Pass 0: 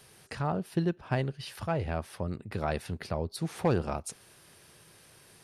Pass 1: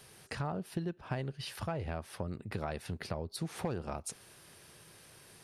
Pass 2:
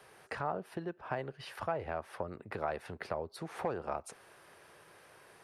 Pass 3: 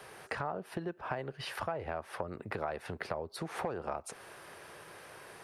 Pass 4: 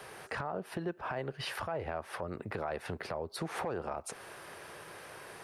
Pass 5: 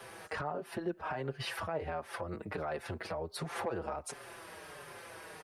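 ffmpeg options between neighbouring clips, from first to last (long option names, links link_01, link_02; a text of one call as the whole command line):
ffmpeg -i in.wav -af "acompressor=threshold=-33dB:ratio=6" out.wav
ffmpeg -i in.wav -filter_complex "[0:a]acrossover=split=390 2100:gain=0.2 1 0.2[link_01][link_02][link_03];[link_01][link_02][link_03]amix=inputs=3:normalize=0,volume=5dB" out.wav
ffmpeg -i in.wav -af "acompressor=threshold=-44dB:ratio=2.5,volume=7.5dB" out.wav
ffmpeg -i in.wav -af "alimiter=level_in=4.5dB:limit=-24dB:level=0:latency=1:release=29,volume=-4.5dB,volume=2.5dB" out.wav
ffmpeg -i in.wav -filter_complex "[0:a]asplit=2[link_01][link_02];[link_02]adelay=5.4,afreqshift=-1.4[link_03];[link_01][link_03]amix=inputs=2:normalize=1,volume=2.5dB" out.wav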